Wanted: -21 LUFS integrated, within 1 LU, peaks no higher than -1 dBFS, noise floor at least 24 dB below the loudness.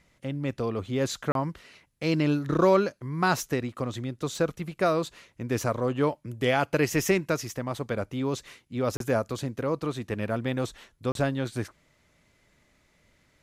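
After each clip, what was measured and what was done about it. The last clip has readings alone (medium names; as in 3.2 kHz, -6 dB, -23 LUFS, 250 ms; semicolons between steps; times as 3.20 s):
dropouts 3; longest dropout 32 ms; loudness -28.5 LUFS; peak level -10.0 dBFS; loudness target -21.0 LUFS
-> interpolate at 1.32/8.97/11.12 s, 32 ms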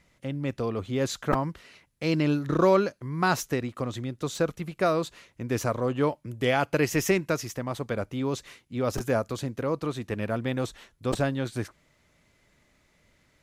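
dropouts 0; loudness -28.5 LUFS; peak level -10.0 dBFS; loudness target -21.0 LUFS
-> trim +7.5 dB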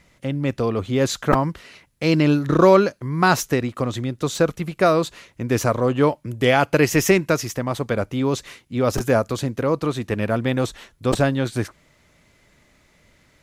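loudness -21.0 LUFS; peak level -2.5 dBFS; noise floor -59 dBFS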